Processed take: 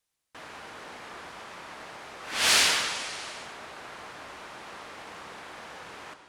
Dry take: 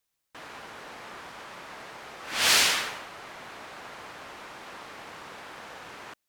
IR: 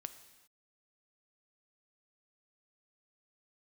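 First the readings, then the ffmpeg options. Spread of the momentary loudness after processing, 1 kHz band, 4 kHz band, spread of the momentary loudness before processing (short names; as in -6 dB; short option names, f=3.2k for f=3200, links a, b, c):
22 LU, 0.0 dB, 0.0 dB, 22 LU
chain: -filter_complex "[1:a]atrim=start_sample=2205,asetrate=22050,aresample=44100[a];[0:a][a]afir=irnorm=-1:irlink=0"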